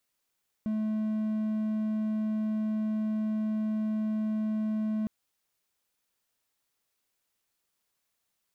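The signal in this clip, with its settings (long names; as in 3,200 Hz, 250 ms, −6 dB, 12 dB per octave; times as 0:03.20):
tone triangle 216 Hz −25 dBFS 4.41 s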